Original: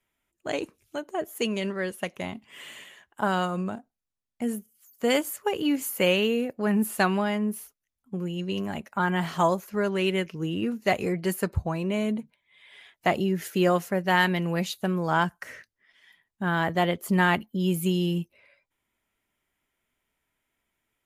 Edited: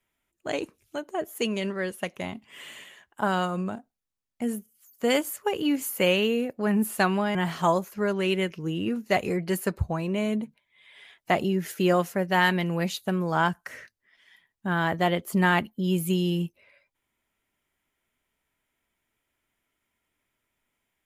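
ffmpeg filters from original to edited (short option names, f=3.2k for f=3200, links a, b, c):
-filter_complex "[0:a]asplit=2[a][b];[a]atrim=end=7.352[c];[b]atrim=start=9.108[d];[c][d]acrossfade=d=0.004:c1=hsin:c2=hsin"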